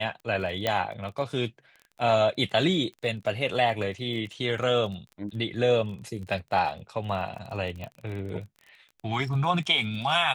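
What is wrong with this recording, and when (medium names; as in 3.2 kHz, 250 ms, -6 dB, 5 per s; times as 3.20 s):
crackle 25 per s -36 dBFS
0.67 s: pop -11 dBFS
7.84 s: pop -24 dBFS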